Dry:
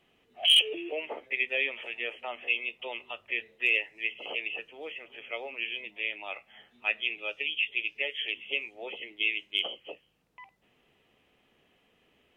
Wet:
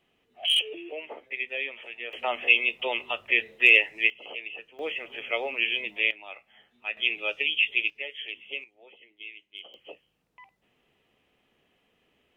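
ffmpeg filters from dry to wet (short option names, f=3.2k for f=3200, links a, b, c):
-af "asetnsamples=n=441:p=0,asendcmd='2.13 volume volume 9dB;4.1 volume volume -3.5dB;4.79 volume volume 8dB;6.11 volume volume -4dB;6.97 volume volume 5.5dB;7.9 volume volume -4dB;8.64 volume volume -14dB;9.74 volume volume -2dB',volume=-3dB"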